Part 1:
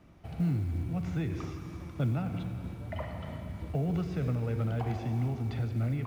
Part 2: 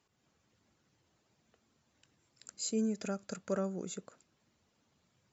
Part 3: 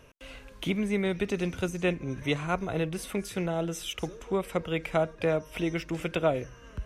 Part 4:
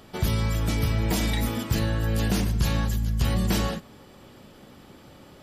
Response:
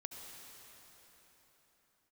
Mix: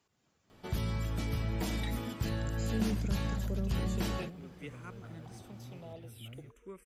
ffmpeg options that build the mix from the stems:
-filter_complex "[0:a]adelay=450,volume=0.119[s0];[1:a]acrossover=split=340[s1][s2];[s2]acompressor=threshold=0.00316:ratio=6[s3];[s1][s3]amix=inputs=2:normalize=0,volume=1[s4];[2:a]highshelf=f=8200:g=8.5,asplit=2[s5][s6];[s6]afreqshift=-0.5[s7];[s5][s7]amix=inputs=2:normalize=1,adelay=2350,volume=0.141[s8];[3:a]highshelf=f=5300:g=-5,adelay=500,volume=0.335[s9];[s0][s4][s8][s9]amix=inputs=4:normalize=0"

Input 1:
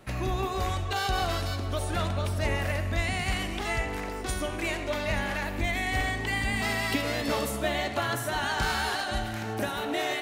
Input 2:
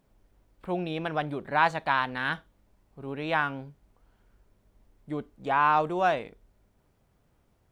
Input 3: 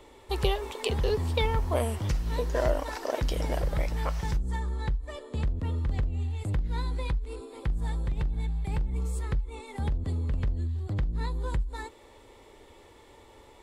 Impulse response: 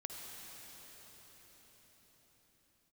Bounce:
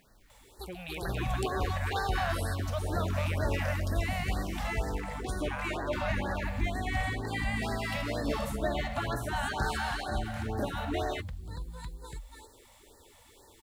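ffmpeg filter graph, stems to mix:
-filter_complex "[0:a]highshelf=f=2700:g=-9,adelay=1000,volume=0.841[s0];[1:a]equalizer=f=2100:w=0.88:g=14.5,acompressor=threshold=0.0501:ratio=6,volume=1.26,asplit=3[s1][s2][s3];[s2]volume=0.188[s4];[2:a]crystalizer=i=2.5:c=0,adelay=300,volume=0.708,asplit=2[s5][s6];[s6]volume=0.282[s7];[s3]apad=whole_len=613902[s8];[s5][s8]sidechaincompress=threshold=0.0158:ratio=8:attack=16:release=1010[s9];[s1][s9]amix=inputs=2:normalize=0,acompressor=threshold=0.00112:ratio=1.5,volume=1[s10];[s4][s7]amix=inputs=2:normalize=0,aecho=0:1:284:1[s11];[s0][s10][s11]amix=inputs=3:normalize=0,acrusher=bits=10:mix=0:aa=0.000001,afftfilt=real='re*(1-between(b*sr/1024,320*pow(2800/320,0.5+0.5*sin(2*PI*2.1*pts/sr))/1.41,320*pow(2800/320,0.5+0.5*sin(2*PI*2.1*pts/sr))*1.41))':imag='im*(1-between(b*sr/1024,320*pow(2800/320,0.5+0.5*sin(2*PI*2.1*pts/sr))/1.41,320*pow(2800/320,0.5+0.5*sin(2*PI*2.1*pts/sr))*1.41))':win_size=1024:overlap=0.75"

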